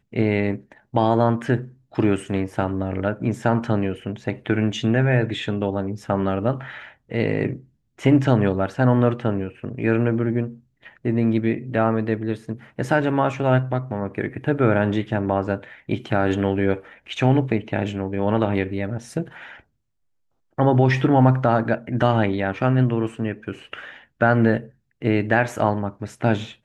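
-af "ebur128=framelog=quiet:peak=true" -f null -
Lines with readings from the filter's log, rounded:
Integrated loudness:
  I:         -22.0 LUFS
  Threshold: -32.4 LUFS
Loudness range:
  LRA:         3.2 LU
  Threshold: -42.5 LUFS
  LRA low:   -23.8 LUFS
  LRA high:  -20.7 LUFS
True peak:
  Peak:       -2.3 dBFS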